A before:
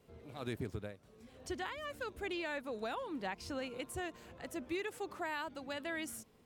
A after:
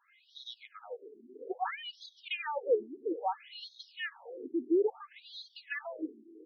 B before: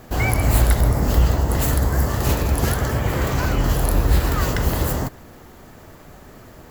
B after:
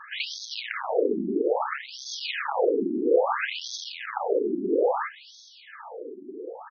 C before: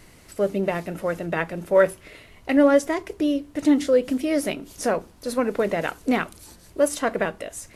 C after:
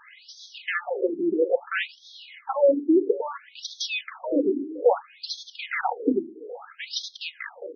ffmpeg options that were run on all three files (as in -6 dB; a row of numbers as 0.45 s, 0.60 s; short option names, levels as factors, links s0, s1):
-filter_complex "[0:a]equalizer=f=490:w=3.9:g=7,aecho=1:1:2.4:0.73,asplit=2[s0][s1];[s1]alimiter=limit=0.299:level=0:latency=1:release=157,volume=1.41[s2];[s0][s2]amix=inputs=2:normalize=0,volume=3.76,asoftclip=hard,volume=0.266,asplit=2[s3][s4];[s4]aecho=0:1:412|824|1236|1648|2060:0.0891|0.0526|0.031|0.0183|0.0108[s5];[s3][s5]amix=inputs=2:normalize=0,afftfilt=real='re*between(b*sr/1024,270*pow(4700/270,0.5+0.5*sin(2*PI*0.6*pts/sr))/1.41,270*pow(4700/270,0.5+0.5*sin(2*PI*0.6*pts/sr))*1.41)':imag='im*between(b*sr/1024,270*pow(4700/270,0.5+0.5*sin(2*PI*0.6*pts/sr))/1.41,270*pow(4700/270,0.5+0.5*sin(2*PI*0.6*pts/sr))*1.41)':win_size=1024:overlap=0.75"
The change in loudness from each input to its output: +5.5 LU, -7.0 LU, -3.0 LU